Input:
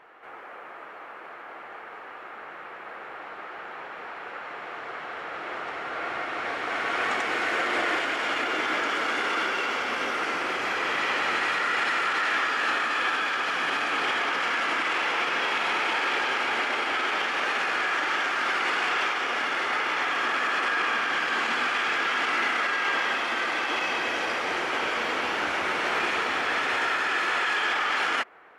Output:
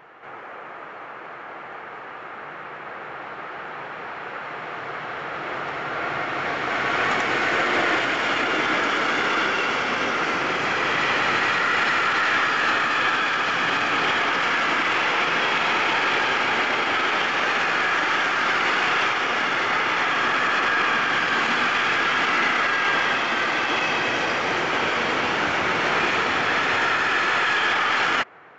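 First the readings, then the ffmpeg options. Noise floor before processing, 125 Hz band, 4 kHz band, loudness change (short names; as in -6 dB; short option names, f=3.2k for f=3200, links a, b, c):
-42 dBFS, n/a, +4.5 dB, +4.5 dB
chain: -af "aeval=exprs='0.188*(cos(1*acos(clip(val(0)/0.188,-1,1)))-cos(1*PI/2))+0.00335*(cos(4*acos(clip(val(0)/0.188,-1,1)))-cos(4*PI/2))':c=same,equalizer=f=130:w=1.2:g=11.5,aresample=16000,aresample=44100,volume=4.5dB"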